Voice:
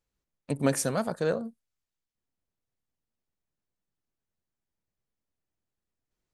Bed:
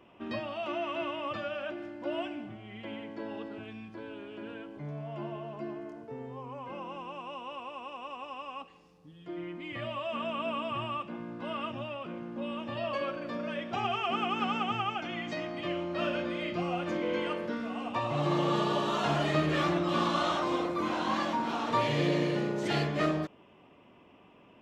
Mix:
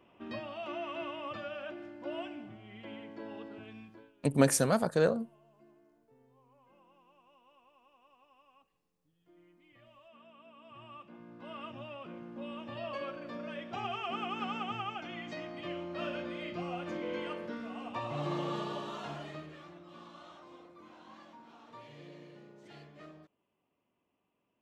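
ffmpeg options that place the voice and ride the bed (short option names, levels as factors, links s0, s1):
-filter_complex "[0:a]adelay=3750,volume=1.12[s0];[1:a]volume=4.22,afade=t=out:st=3.8:d=0.32:silence=0.11885,afade=t=in:st=10.56:d=1.46:silence=0.133352,afade=t=out:st=18.23:d=1.36:silence=0.133352[s1];[s0][s1]amix=inputs=2:normalize=0"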